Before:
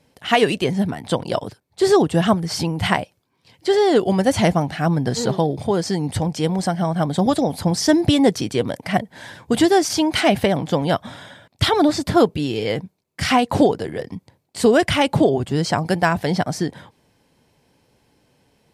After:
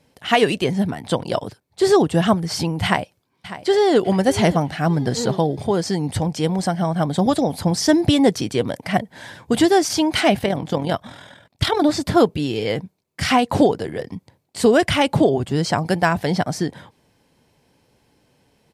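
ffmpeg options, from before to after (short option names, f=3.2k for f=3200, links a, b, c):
-filter_complex "[0:a]asplit=2[a][b];[b]afade=t=in:st=2.84:d=0.01,afade=t=out:st=3.96:d=0.01,aecho=0:1:600|1200|1800:0.199526|0.0698342|0.024442[c];[a][c]amix=inputs=2:normalize=0,asettb=1/sr,asplit=3[d][e][f];[d]atrim=end=10.364[g];[e]atrim=start=10.36:end=11.85,asetpts=PTS-STARTPTS,afade=t=in:d=0.004:c=qsin,afade=t=out:st=1.486:d=0.004:c=qsin,tremolo=f=41:d=0.571[h];[f]atrim=start=11.846[i];[g][h]acrossfade=d=0.004:c1=hsin:c2=qsin[j];[j][i]acrossfade=d=0.004:c1=qsin:c2=hsin"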